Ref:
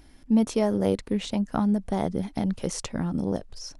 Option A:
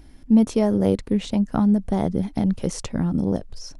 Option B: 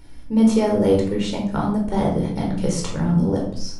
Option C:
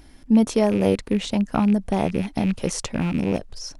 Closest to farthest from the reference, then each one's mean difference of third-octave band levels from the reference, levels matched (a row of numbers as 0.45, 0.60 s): C, A, B; 1.5, 2.5, 5.5 dB